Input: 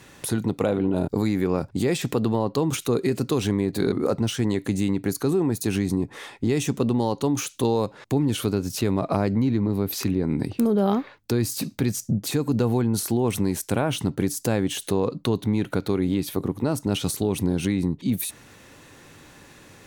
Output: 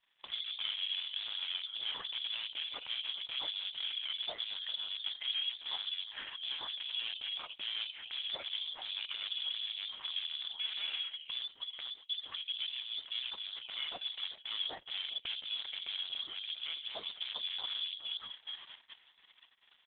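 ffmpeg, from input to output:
ffmpeg -i in.wav -filter_complex "[0:a]asplit=4[link_01][link_02][link_03][link_04];[link_02]adelay=405,afreqshift=82,volume=-18dB[link_05];[link_03]adelay=810,afreqshift=164,volume=-27.6dB[link_06];[link_04]adelay=1215,afreqshift=246,volume=-37.3dB[link_07];[link_01][link_05][link_06][link_07]amix=inputs=4:normalize=0,asettb=1/sr,asplit=3[link_08][link_09][link_10];[link_08]atrim=end=11.164[link_11];[link_09]atrim=start=11.16:end=13.56,asetpts=PTS-STARTPTS,afade=type=in:duration=0.004:curve=qsin,afade=type=out:start_time=2.396:duration=0.004:curve=qsin,flanger=delay=8.5:depth=1.6:regen=54:speed=1:shape=triangular[link_12];[link_10]atrim=start=13.556[link_13];[link_11][link_12]acrossfade=duration=0.004:curve1=hsin:curve2=qsin[link_14];[link_14][link_13]acrossfade=duration=0.004:curve1=qsin:curve2=hsin,bandreject=frequency=133.5:width_type=h:width=4,bandreject=frequency=267:width_type=h:width=4,bandreject=frequency=400.5:width_type=h:width=4,bandreject=frequency=534:width_type=h:width=4,bandreject=frequency=667.5:width_type=h:width=4,bandreject=frequency=801:width_type=h:width=4,bandreject=frequency=934.5:width_type=h:width=4,bandreject=frequency=1068:width_type=h:width=4,bandreject=frequency=1201.5:width_type=h:width=4,bandreject=frequency=1335:width_type=h:width=4,bandreject=frequency=1468.5:width_type=h:width=4,bandreject=frequency=1602:width_type=h:width=4,bandreject=frequency=1735.5:width_type=h:width=4,bandreject=frequency=1869:width_type=h:width=4,bandreject=frequency=2002.5:width_type=h:width=4,bandreject=frequency=2136:width_type=h:width=4,asoftclip=type=hard:threshold=-26.5dB,acompressor=threshold=-33dB:ratio=5,highshelf=frequency=2400:gain=-3,lowpass=frequency=3100:width_type=q:width=0.5098,lowpass=frequency=3100:width_type=q:width=0.6013,lowpass=frequency=3100:width_type=q:width=0.9,lowpass=frequency=3100:width_type=q:width=2.563,afreqshift=-3600,lowshelf=frequency=270:gain=-5,agate=range=-28dB:threshold=-47dB:ratio=16:detection=peak" -ar 48000 -c:a libopus -b:a 8k out.opus

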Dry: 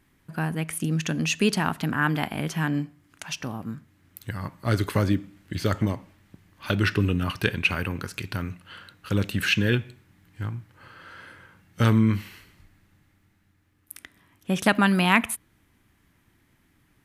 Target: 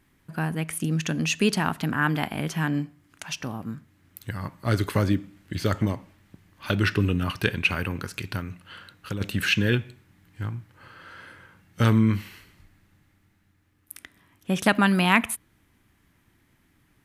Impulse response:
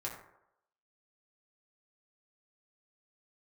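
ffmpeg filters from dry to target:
-filter_complex "[0:a]asplit=3[link_01][link_02][link_03];[link_01]afade=type=out:start_time=8.39:duration=0.02[link_04];[link_02]acompressor=threshold=-28dB:ratio=6,afade=type=in:start_time=8.39:duration=0.02,afade=type=out:start_time=9.2:duration=0.02[link_05];[link_03]afade=type=in:start_time=9.2:duration=0.02[link_06];[link_04][link_05][link_06]amix=inputs=3:normalize=0"

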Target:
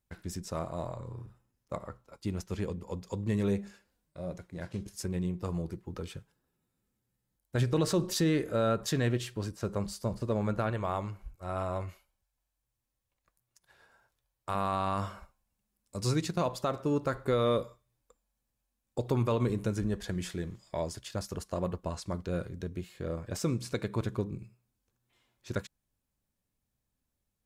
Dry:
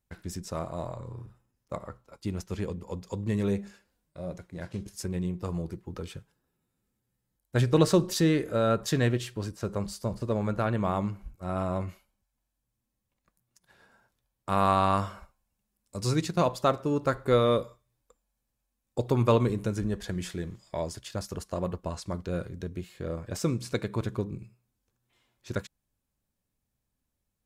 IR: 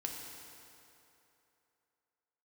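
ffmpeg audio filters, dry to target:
-filter_complex "[0:a]alimiter=limit=-18dB:level=0:latency=1:release=69,asettb=1/sr,asplit=3[link_01][link_02][link_03];[link_01]atrim=end=10.704[link_04];[link_02]atrim=start=10.7:end=14.55,asetpts=PTS-STARTPTS,afade=type=in:duration=0.004:curve=qsin,afade=type=out:start_time=3.846:duration=0.004:curve=qsin,equalizer=frequency=210:width=1.3:gain=-10[link_05];[link_03]atrim=start=14.546[link_06];[link_04][link_05]acrossfade=duration=0.004:curve1=hsin:curve2=qsin[link_07];[link_07][link_06]acrossfade=duration=0.004:curve1=qsin:curve2=hsin,volume=-1.5dB"

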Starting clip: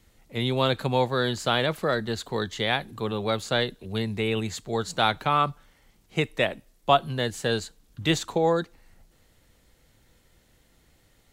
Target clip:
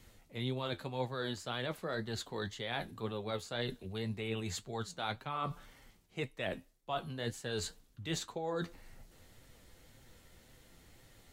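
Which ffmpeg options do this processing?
ffmpeg -i in.wav -af "areverse,acompressor=threshold=-39dB:ratio=4,areverse,flanger=delay=7.4:depth=4.4:regen=54:speed=1.9:shape=sinusoidal,volume=5.5dB" out.wav

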